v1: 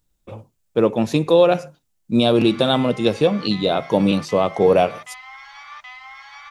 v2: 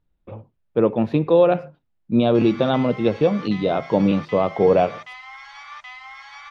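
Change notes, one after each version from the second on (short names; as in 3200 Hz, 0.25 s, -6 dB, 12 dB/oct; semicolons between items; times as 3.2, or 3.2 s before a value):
speech: add air absorption 430 m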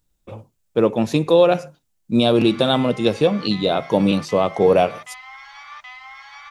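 speech: remove air absorption 430 m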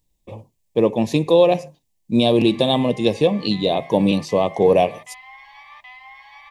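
background: add air absorption 220 m; master: add Butterworth band-stop 1400 Hz, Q 2.3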